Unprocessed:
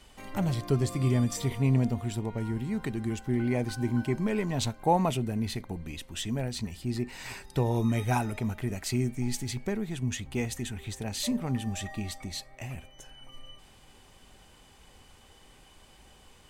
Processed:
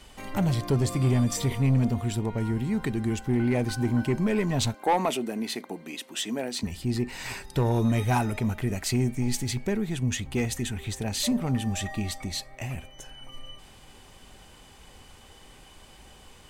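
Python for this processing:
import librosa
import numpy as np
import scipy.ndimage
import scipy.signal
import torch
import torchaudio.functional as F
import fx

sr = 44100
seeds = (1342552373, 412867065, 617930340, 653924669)

y = fx.highpass(x, sr, hz=240.0, slope=24, at=(4.74, 6.63))
y = 10.0 ** (-21.0 / 20.0) * np.tanh(y / 10.0 ** (-21.0 / 20.0))
y = y * librosa.db_to_amplitude(5.0)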